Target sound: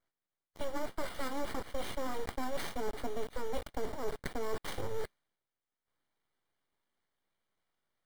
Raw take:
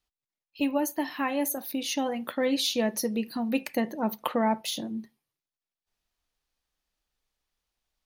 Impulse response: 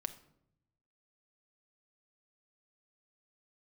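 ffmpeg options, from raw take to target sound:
-filter_complex "[0:a]lowpass=12000,acrossover=split=170[link_01][link_02];[link_02]acompressor=threshold=-37dB:ratio=4[link_03];[link_01][link_03]amix=inputs=2:normalize=0,acrossover=split=3300[link_04][link_05];[link_04]acrusher=bits=7:mix=0:aa=0.000001[link_06];[link_05]flanger=delay=19.5:depth=2.1:speed=0.66[link_07];[link_06][link_07]amix=inputs=2:normalize=0,acrusher=samples=7:mix=1:aa=0.000001,tiltshelf=frequency=970:gain=3.5,aeval=exprs='abs(val(0))':channel_layout=same,asuperstop=centerf=2600:order=4:qfactor=6.8,areverse,acompressor=threshold=-40dB:ratio=6,areverse,volume=9.5dB"

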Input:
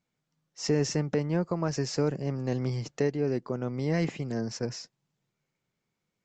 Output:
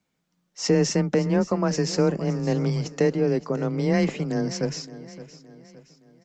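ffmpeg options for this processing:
ffmpeg -i in.wav -filter_complex "[0:a]afreqshift=20,asplit=2[link_01][link_02];[link_02]aecho=0:1:568|1136|1704|2272:0.158|0.0682|0.0293|0.0126[link_03];[link_01][link_03]amix=inputs=2:normalize=0,volume=6dB" out.wav

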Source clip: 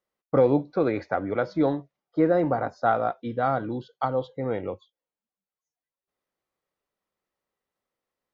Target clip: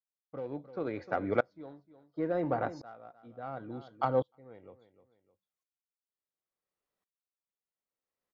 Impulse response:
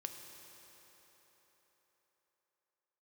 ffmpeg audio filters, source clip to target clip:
-filter_complex "[0:a]asettb=1/sr,asplit=3[link_01][link_02][link_03];[link_01]atrim=end=3.064[link_04];[link_02]atrim=start=3.06:end=3.57,asetpts=PTS-STARTPTS,afade=type=in:duration=0.004:curve=qsin,afade=type=out:start_time=0.506:duration=0.004:curve=qsin,equalizer=frequency=3200:width=0.57:gain=-5[link_05];[link_03]atrim=start=3.566[link_06];[link_04][link_05]acrossfade=duration=0.004:curve1=hsin:curve2=qsin[link_07];[link_07][link_06]acrossfade=duration=0.004:curve1=qsin:curve2=hsin,aeval=exprs='0.335*(cos(1*acos(clip(val(0)/0.335,-1,1)))-cos(1*PI/2))+0.00668*(cos(7*acos(clip(val(0)/0.335,-1,1)))-cos(7*PI/2))':channel_layout=same,aecho=1:1:305|610:0.112|0.0213,aeval=exprs='val(0)*pow(10,-29*if(lt(mod(-0.71*n/s,1),2*abs(-0.71)/1000),1-mod(-0.71*n/s,1)/(2*abs(-0.71)/1000),(mod(-0.71*n/s,1)-2*abs(-0.71)/1000)/(1-2*abs(-0.71)/1000))/20)':channel_layout=same"

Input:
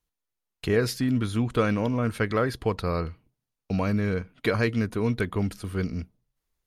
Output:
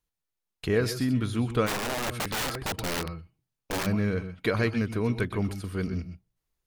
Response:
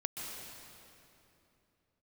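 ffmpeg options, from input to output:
-filter_complex "[1:a]atrim=start_sample=2205,afade=type=out:start_time=0.18:duration=0.01,atrim=end_sample=8379[link_01];[0:a][link_01]afir=irnorm=-1:irlink=0,asplit=3[link_02][link_03][link_04];[link_02]afade=type=out:start_time=1.66:duration=0.02[link_05];[link_03]aeval=exprs='(mod(16.8*val(0)+1,2)-1)/16.8':channel_layout=same,afade=type=in:start_time=1.66:duration=0.02,afade=type=out:start_time=3.85:duration=0.02[link_06];[link_04]afade=type=in:start_time=3.85:duration=0.02[link_07];[link_05][link_06][link_07]amix=inputs=3:normalize=0"

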